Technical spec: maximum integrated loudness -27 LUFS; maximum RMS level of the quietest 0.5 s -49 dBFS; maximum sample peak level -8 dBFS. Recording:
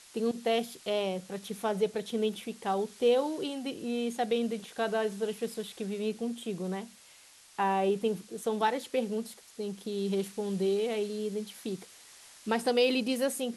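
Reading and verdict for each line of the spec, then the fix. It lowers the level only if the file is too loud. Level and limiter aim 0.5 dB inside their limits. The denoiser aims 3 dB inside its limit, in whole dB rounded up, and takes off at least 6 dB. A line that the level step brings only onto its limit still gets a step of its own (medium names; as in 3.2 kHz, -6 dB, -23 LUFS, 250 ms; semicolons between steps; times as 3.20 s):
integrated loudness -32.0 LUFS: pass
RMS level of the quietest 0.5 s -56 dBFS: pass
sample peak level -14.0 dBFS: pass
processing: none needed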